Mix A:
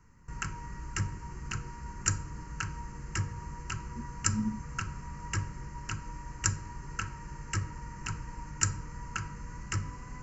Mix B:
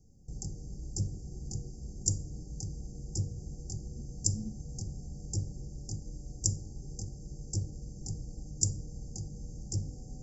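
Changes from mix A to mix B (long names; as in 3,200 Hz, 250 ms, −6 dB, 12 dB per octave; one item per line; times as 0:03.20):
speech −9.0 dB
master: add linear-phase brick-wall band-stop 820–4,500 Hz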